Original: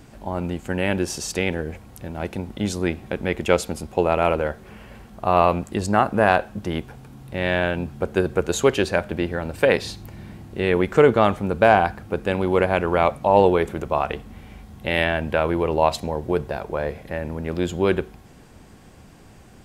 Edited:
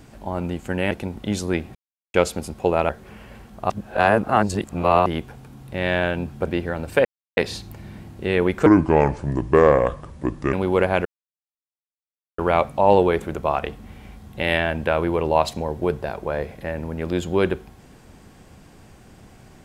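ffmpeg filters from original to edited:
ffmpeg -i in.wav -filter_complex "[0:a]asplit=12[link_01][link_02][link_03][link_04][link_05][link_06][link_07][link_08][link_09][link_10][link_11][link_12];[link_01]atrim=end=0.912[link_13];[link_02]atrim=start=2.238:end=3.08,asetpts=PTS-STARTPTS,afade=type=out:start_time=0.838:duration=0.004:curve=hsin[link_14];[link_03]atrim=start=3.08:end=3.47,asetpts=PTS-STARTPTS,volume=0[link_15];[link_04]atrim=start=3.47:end=4.222,asetpts=PTS-STARTPTS,afade=type=in:duration=0.004:curve=hsin[link_16];[link_05]atrim=start=4.488:end=5.302[link_17];[link_06]atrim=start=5.298:end=6.662,asetpts=PTS-STARTPTS,areverse[link_18];[link_07]atrim=start=6.658:end=8.072[link_19];[link_08]atrim=start=9.128:end=9.71,asetpts=PTS-STARTPTS,afade=type=out:start_time=0.578:duration=0.004:curve=hsin,apad=pad_dur=0.32[link_20];[link_09]atrim=start=9.71:end=11.004,asetpts=PTS-STARTPTS,afade=type=in:duration=0.004:curve=hsin[link_21];[link_10]atrim=start=11:end=12.33,asetpts=PTS-STARTPTS,asetrate=31311,aresample=44100[link_22];[link_11]atrim=start=12.326:end=12.85,asetpts=PTS-STARTPTS,afade=type=out:start_time=0.52:duration=0.004:curve=hsin,apad=pad_dur=1.33[link_23];[link_12]atrim=start=12.85,asetpts=PTS-STARTPTS,afade=type=in:duration=0.004:curve=hsin[link_24];[link_14][link_15][link_16]concat=n=3:v=0:a=1[link_25];[link_13][link_25]acrossfade=duration=0.004:curve1=hsin:curve2=hsin[link_26];[link_26][link_17]acrossfade=duration=0.004:curve1=hsin:curve2=hsin[link_27];[link_27][link_18]acrossfade=duration=0.004:curve1=hsin:curve2=hsin[link_28];[link_28][link_19]acrossfade=duration=0.004:curve1=hsin:curve2=hsin[link_29];[link_20][link_21]concat=n=2:v=0:a=1[link_30];[link_29][link_30]acrossfade=duration=0.004:curve1=hsin:curve2=hsin[link_31];[link_31][link_22]acrossfade=duration=0.004:curve1=hsin:curve2=hsin[link_32];[link_23][link_24]concat=n=2:v=0:a=1[link_33];[link_32][link_33]acrossfade=duration=0.004:curve1=hsin:curve2=hsin" out.wav

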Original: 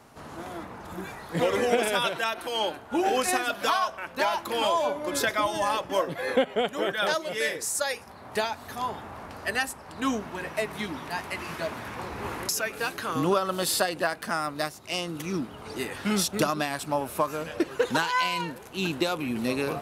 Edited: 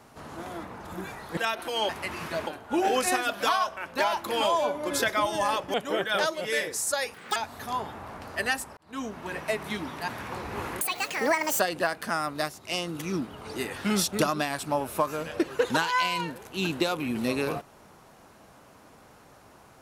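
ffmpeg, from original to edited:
ffmpeg -i in.wav -filter_complex "[0:a]asplit=11[link_01][link_02][link_03][link_04][link_05][link_06][link_07][link_08][link_09][link_10][link_11];[link_01]atrim=end=1.372[link_12];[link_02]atrim=start=2.158:end=2.682[link_13];[link_03]atrim=start=11.168:end=11.752[link_14];[link_04]atrim=start=2.678:end=5.952[link_15];[link_05]atrim=start=6.618:end=8.024[link_16];[link_06]atrim=start=8.02:end=8.45,asetpts=PTS-STARTPTS,asetrate=85995,aresample=44100[link_17];[link_07]atrim=start=8.446:end=9.86,asetpts=PTS-STARTPTS,afade=type=out:start_time=1.41:duration=0.004:curve=hsin[link_18];[link_08]atrim=start=9.86:end=11.172,asetpts=PTS-STARTPTS,afade=type=in:duration=0.55[link_19];[link_09]atrim=start=11.748:end=12.474[link_20];[link_10]atrim=start=12.47:end=13.8,asetpts=PTS-STARTPTS,asetrate=73647,aresample=44100[link_21];[link_11]atrim=start=13.796[link_22];[link_12][link_13]acrossfade=duration=0.004:curve1=hsin:curve2=hsin[link_23];[link_23][link_14]acrossfade=duration=0.004:curve1=hsin:curve2=hsin[link_24];[link_24][link_15]acrossfade=duration=0.004:curve1=hsin:curve2=hsin[link_25];[link_25][link_16]acrossfade=duration=0.004:curve1=hsin:curve2=hsin[link_26];[link_26][link_17]acrossfade=duration=0.004:curve1=hsin:curve2=hsin[link_27];[link_18][link_19]concat=n=2:v=0:a=1[link_28];[link_27][link_28]acrossfade=duration=0.004:curve1=hsin:curve2=hsin[link_29];[link_29][link_20]acrossfade=duration=0.004:curve1=hsin:curve2=hsin[link_30];[link_30][link_21]acrossfade=duration=0.004:curve1=hsin:curve2=hsin[link_31];[link_31][link_22]acrossfade=duration=0.004:curve1=hsin:curve2=hsin" out.wav

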